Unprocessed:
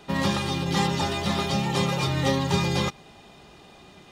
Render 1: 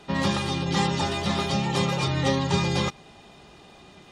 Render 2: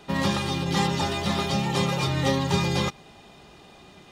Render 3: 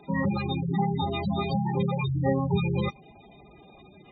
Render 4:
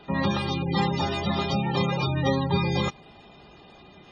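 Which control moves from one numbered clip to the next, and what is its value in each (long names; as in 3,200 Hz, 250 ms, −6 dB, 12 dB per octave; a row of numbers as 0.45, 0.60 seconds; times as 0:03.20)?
gate on every frequency bin, under each frame's peak: −40, −55, −10, −20 decibels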